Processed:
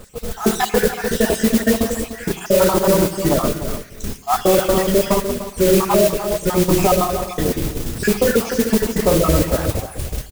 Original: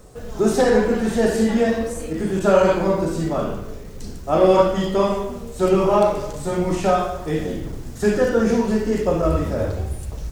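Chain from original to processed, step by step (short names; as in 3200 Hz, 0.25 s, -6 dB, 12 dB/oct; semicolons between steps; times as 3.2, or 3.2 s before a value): random spectral dropouts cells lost 54%; outdoor echo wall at 51 m, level -12 dB; on a send at -16 dB: reverb RT60 0.60 s, pre-delay 52 ms; on the sum: modulation noise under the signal 11 dB; maximiser +10.5 dB; gain -3.5 dB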